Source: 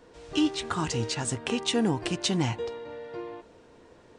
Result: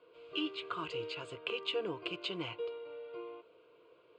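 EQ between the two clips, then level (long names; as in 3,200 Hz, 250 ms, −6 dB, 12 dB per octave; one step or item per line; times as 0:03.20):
loudspeaker in its box 320–4,600 Hz, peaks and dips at 390 Hz −4 dB, 580 Hz −7 dB, 900 Hz −5 dB, 1,300 Hz −5 dB, 1,900 Hz −4 dB, 3,900 Hz −4 dB
parametric band 3,600 Hz −4.5 dB 0.43 octaves
phaser with its sweep stopped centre 1,200 Hz, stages 8
−1.0 dB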